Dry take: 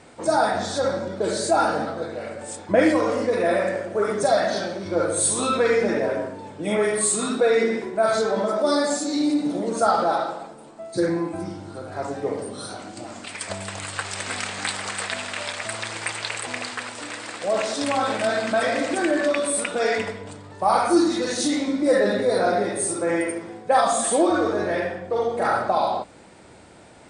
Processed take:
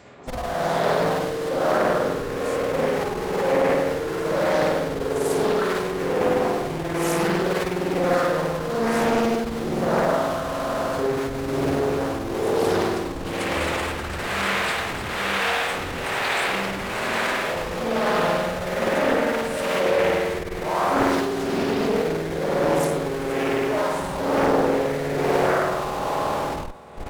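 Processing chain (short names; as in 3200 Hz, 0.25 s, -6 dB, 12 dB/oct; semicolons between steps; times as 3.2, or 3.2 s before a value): HPF 68 Hz 24 dB/oct; dynamic EQ 7500 Hz, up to -4 dB, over -39 dBFS, Q 0.85; reverse; compressor 5:1, threshold -30 dBFS, peak gain reduction 16 dB; reverse; spring tank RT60 3.3 s, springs 49 ms, chirp 60 ms, DRR -9 dB; tremolo 1.1 Hz, depth 70%; in parallel at -5.5 dB: Schmitt trigger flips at -32.5 dBFS; on the sum: thin delay 0.122 s, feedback 78%, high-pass 4500 Hz, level -23 dB; formant-preserving pitch shift -4 st; Doppler distortion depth 0.61 ms; gain +1.5 dB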